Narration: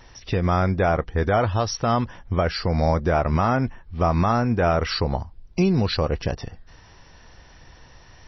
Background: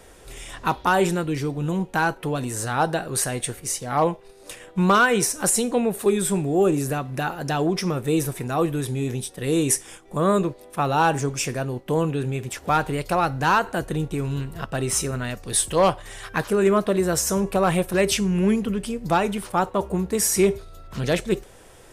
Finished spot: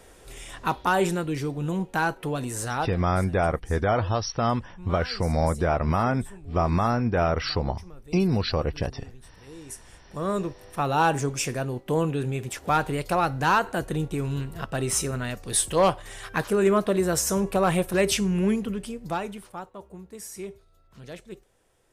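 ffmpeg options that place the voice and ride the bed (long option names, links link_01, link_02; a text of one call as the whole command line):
ffmpeg -i stem1.wav -i stem2.wav -filter_complex "[0:a]adelay=2550,volume=-3dB[link_01];[1:a]volume=18dB,afade=type=out:start_time=2.73:duration=0.22:silence=0.1,afade=type=in:start_time=9.64:duration=1.37:silence=0.0891251,afade=type=out:start_time=18.24:duration=1.44:silence=0.149624[link_02];[link_01][link_02]amix=inputs=2:normalize=0" out.wav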